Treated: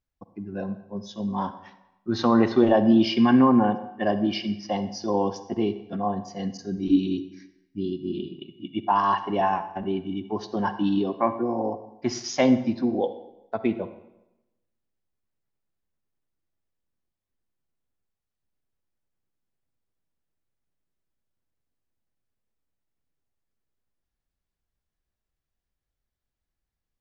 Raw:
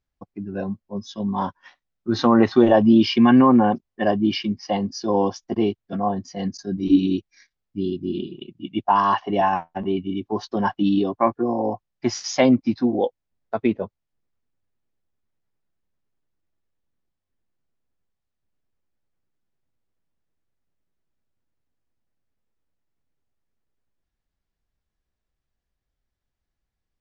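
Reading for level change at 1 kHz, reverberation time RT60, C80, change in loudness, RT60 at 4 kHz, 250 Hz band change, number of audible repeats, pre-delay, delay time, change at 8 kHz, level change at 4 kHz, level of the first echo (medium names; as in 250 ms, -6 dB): -3.5 dB, 0.90 s, 14.5 dB, -3.5 dB, 0.75 s, -3.5 dB, no echo, 38 ms, no echo, no reading, -3.5 dB, no echo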